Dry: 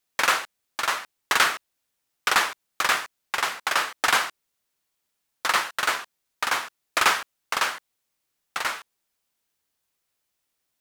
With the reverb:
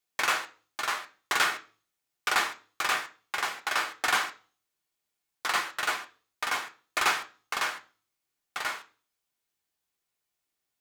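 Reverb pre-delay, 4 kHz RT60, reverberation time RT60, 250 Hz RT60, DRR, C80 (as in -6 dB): 3 ms, 0.40 s, 0.40 s, 0.45 s, 3.0 dB, 21.5 dB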